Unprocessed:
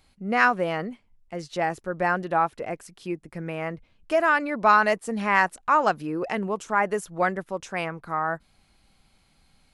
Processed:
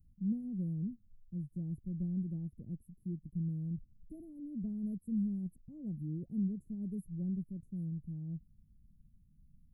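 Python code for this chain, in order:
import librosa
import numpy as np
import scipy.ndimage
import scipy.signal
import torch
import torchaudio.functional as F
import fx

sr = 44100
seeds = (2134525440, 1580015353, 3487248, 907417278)

y = scipy.signal.sosfilt(scipy.signal.cheby2(4, 80, [960.0, 4900.0], 'bandstop', fs=sr, output='sos'), x)
y = F.gain(torch.from_numpy(y), 1.5).numpy()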